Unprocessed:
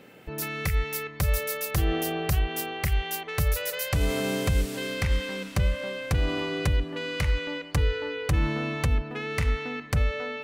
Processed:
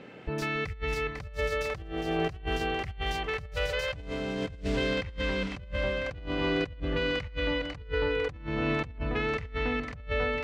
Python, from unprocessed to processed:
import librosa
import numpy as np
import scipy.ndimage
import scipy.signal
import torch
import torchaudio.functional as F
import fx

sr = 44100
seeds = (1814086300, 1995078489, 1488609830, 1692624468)

y = fx.echo_split(x, sr, split_hz=480.0, low_ms=138, high_ms=499, feedback_pct=52, wet_db=-14.5)
y = fx.over_compress(y, sr, threshold_db=-30.0, ratio=-0.5)
y = fx.air_absorb(y, sr, metres=140.0)